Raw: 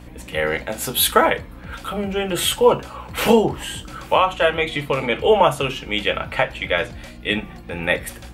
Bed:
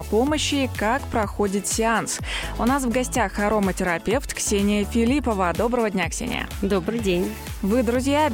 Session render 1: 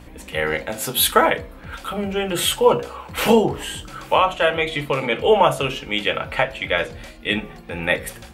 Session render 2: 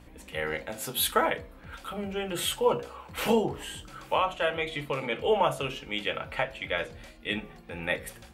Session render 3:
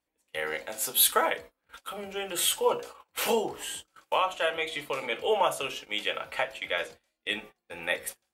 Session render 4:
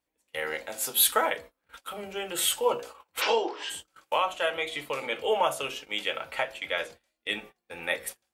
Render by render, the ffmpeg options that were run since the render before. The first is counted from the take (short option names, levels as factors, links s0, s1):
-af "bandreject=f=60:t=h:w=4,bandreject=f=120:t=h:w=4,bandreject=f=180:t=h:w=4,bandreject=f=240:t=h:w=4,bandreject=f=300:t=h:w=4,bandreject=f=360:t=h:w=4,bandreject=f=420:t=h:w=4,bandreject=f=480:t=h:w=4,bandreject=f=540:t=h:w=4,bandreject=f=600:t=h:w=4,bandreject=f=660:t=h:w=4,bandreject=f=720:t=h:w=4"
-af "volume=0.335"
-af "agate=range=0.0398:threshold=0.00891:ratio=16:detection=peak,bass=f=250:g=-15,treble=f=4000:g=7"
-filter_complex "[0:a]asplit=3[s0][s1][s2];[s0]afade=t=out:st=3.2:d=0.02[s3];[s1]highpass=f=320:w=0.5412,highpass=f=320:w=1.3066,equalizer=f=330:t=q:w=4:g=5,equalizer=f=1000:t=q:w=4:g=6,equalizer=f=1500:t=q:w=4:g=6,equalizer=f=2400:t=q:w=4:g=5,equalizer=f=3600:t=q:w=4:g=5,equalizer=f=5200:t=q:w=4:g=9,lowpass=f=5500:w=0.5412,lowpass=f=5500:w=1.3066,afade=t=in:st=3.2:d=0.02,afade=t=out:st=3.69:d=0.02[s4];[s2]afade=t=in:st=3.69:d=0.02[s5];[s3][s4][s5]amix=inputs=3:normalize=0"